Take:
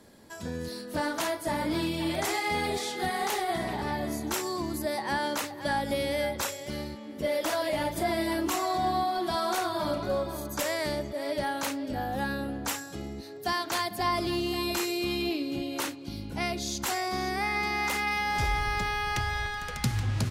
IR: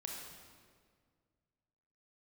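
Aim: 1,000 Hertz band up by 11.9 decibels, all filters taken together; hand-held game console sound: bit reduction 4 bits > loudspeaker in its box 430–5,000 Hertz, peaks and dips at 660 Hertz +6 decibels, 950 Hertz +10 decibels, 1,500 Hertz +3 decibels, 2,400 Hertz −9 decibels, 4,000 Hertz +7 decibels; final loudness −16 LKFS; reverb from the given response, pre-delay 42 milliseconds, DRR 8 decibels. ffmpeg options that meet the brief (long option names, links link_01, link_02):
-filter_complex "[0:a]equalizer=frequency=1000:width_type=o:gain=7.5,asplit=2[link_01][link_02];[1:a]atrim=start_sample=2205,adelay=42[link_03];[link_02][link_03]afir=irnorm=-1:irlink=0,volume=-6.5dB[link_04];[link_01][link_04]amix=inputs=2:normalize=0,acrusher=bits=3:mix=0:aa=0.000001,highpass=430,equalizer=frequency=660:width_type=q:width=4:gain=6,equalizer=frequency=950:width_type=q:width=4:gain=10,equalizer=frequency=1500:width_type=q:width=4:gain=3,equalizer=frequency=2400:width_type=q:width=4:gain=-9,equalizer=frequency=4000:width_type=q:width=4:gain=7,lowpass=frequency=5000:width=0.5412,lowpass=frequency=5000:width=1.3066,volume=5.5dB"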